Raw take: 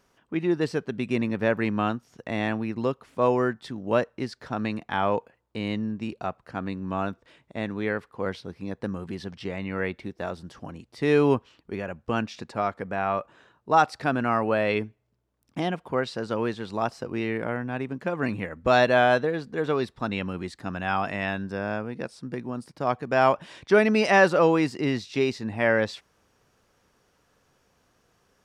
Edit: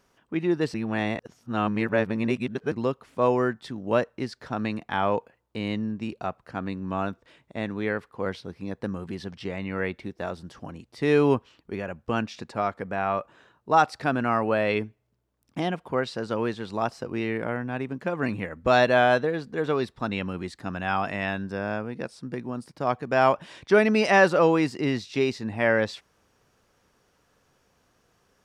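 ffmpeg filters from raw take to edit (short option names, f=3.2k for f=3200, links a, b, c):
-filter_complex "[0:a]asplit=3[a][b][c];[a]atrim=end=0.742[d];[b]atrim=start=0.738:end=2.722,asetpts=PTS-STARTPTS,areverse[e];[c]atrim=start=2.718[f];[d][e]acrossfade=d=0.004:c1=hsin:c2=hsin[g];[g][f]acrossfade=d=0.004:c1=hsin:c2=hsin"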